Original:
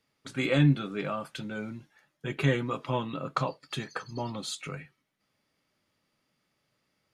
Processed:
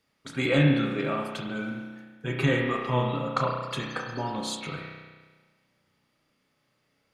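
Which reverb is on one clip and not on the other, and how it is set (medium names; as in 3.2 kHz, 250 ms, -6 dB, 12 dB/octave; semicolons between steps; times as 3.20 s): spring tank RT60 1.4 s, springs 32 ms, chirp 40 ms, DRR 0 dB; trim +1.5 dB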